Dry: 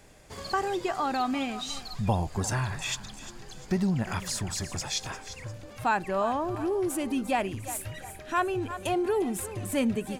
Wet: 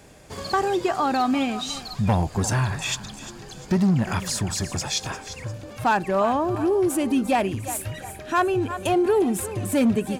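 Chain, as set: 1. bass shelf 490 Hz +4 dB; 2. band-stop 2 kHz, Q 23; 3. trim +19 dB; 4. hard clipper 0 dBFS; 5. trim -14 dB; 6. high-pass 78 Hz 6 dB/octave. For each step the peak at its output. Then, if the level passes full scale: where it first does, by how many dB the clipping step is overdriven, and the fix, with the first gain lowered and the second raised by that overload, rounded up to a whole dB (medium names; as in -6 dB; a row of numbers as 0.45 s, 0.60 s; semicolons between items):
-12.0 dBFS, -12.0 dBFS, +7.0 dBFS, 0.0 dBFS, -14.0 dBFS, -11.0 dBFS; step 3, 7.0 dB; step 3 +12 dB, step 5 -7 dB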